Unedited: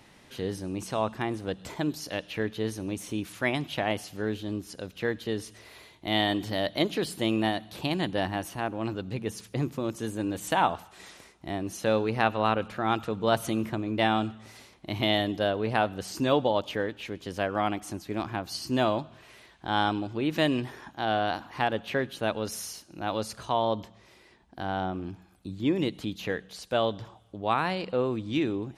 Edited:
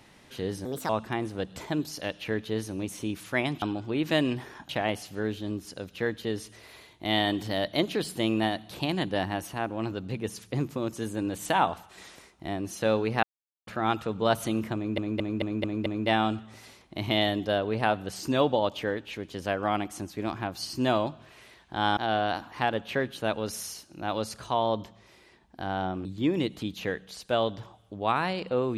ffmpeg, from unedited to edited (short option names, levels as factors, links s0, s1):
-filter_complex "[0:a]asplit=14[s0][s1][s2][s3][s4][s5][s6][s7][s8][s9][s10][s11][s12][s13];[s0]atrim=end=0.654[s14];[s1]atrim=start=0.65:end=0.98,asetpts=PTS-STARTPTS,asetrate=60417,aresample=44100[s15];[s2]atrim=start=0.976:end=3.712[s16];[s3]atrim=start=19.888:end=20.962[s17];[s4]atrim=start=3.708:end=12.25,asetpts=PTS-STARTPTS,afade=t=out:st=8.538:d=0.004:c=hsin[s18];[s5]atrim=start=12.25:end=12.69,asetpts=PTS-STARTPTS,volume=0[s19];[s6]atrim=start=12.69:end=14.002,asetpts=PTS-STARTPTS,afade=t=in:d=0.004:c=hsin[s20];[s7]atrim=start=13.778:end=14.002[s21];[s8]atrim=start=13.778:end=14.002[s22];[s9]atrim=start=13.778:end=14.002[s23];[s10]atrim=start=13.778:end=14.002[s24];[s11]atrim=start=13.778:end=19.892[s25];[s12]atrim=start=20.958:end=25.042[s26];[s13]atrim=start=25.468[s27];[s14][s15]acrossfade=d=0.004:c1=hsin:c2=hsin[s28];[s28][s16]acrossfade=d=0.004:c1=hsin:c2=hsin[s29];[s29][s17]acrossfade=d=0.004:c1=hsin:c2=hsin[s30];[s18][s19][s20]concat=n=3:v=0:a=1[s31];[s30][s31]acrossfade=d=0.004:c1=hsin:c2=hsin[s32];[s32][s21]acrossfade=d=0.004:c1=hsin:c2=hsin[s33];[s33][s22]acrossfade=d=0.004:c1=hsin:c2=hsin[s34];[s34][s23]acrossfade=d=0.004:c1=hsin:c2=hsin[s35];[s35][s24]acrossfade=d=0.004:c1=hsin:c2=hsin[s36];[s36][s25]acrossfade=d=0.004:c1=hsin:c2=hsin[s37];[s37][s26]acrossfade=d=0.004:c1=hsin:c2=hsin[s38];[s38][s27]acrossfade=d=0.004:c1=hsin:c2=hsin"